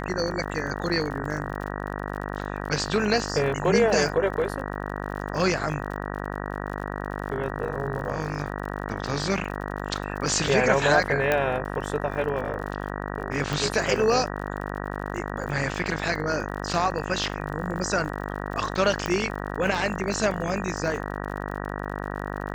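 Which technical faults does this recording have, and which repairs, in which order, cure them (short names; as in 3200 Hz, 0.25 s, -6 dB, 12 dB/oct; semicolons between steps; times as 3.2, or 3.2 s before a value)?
buzz 50 Hz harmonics 38 -32 dBFS
crackle 51/s -34 dBFS
11.32 pop -9 dBFS
13.53 pop
19.06 pop -13 dBFS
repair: de-click; de-hum 50 Hz, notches 38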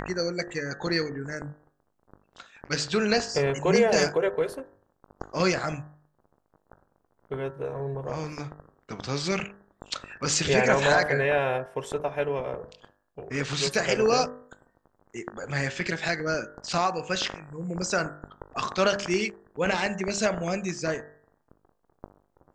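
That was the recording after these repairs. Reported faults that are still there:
13.53 pop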